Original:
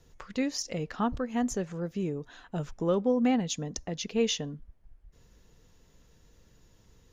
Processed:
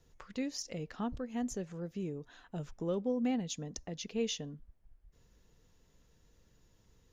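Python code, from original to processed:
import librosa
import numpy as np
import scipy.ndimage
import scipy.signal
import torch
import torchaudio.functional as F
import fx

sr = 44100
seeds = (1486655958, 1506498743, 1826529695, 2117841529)

y = fx.dynamic_eq(x, sr, hz=1200.0, q=0.94, threshold_db=-44.0, ratio=4.0, max_db=-6)
y = y * 10.0 ** (-6.5 / 20.0)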